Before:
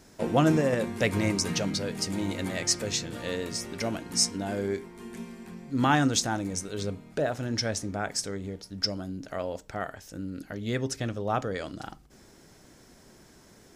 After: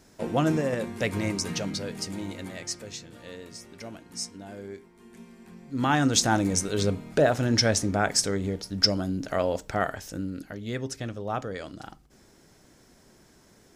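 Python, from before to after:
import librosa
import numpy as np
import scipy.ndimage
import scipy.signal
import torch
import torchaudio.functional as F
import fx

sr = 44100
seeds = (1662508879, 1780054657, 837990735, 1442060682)

y = fx.gain(x, sr, db=fx.line((1.92, -2.0), (2.97, -10.0), (4.99, -10.0), (5.99, 0.0), (6.34, 7.0), (10.02, 7.0), (10.63, -2.5)))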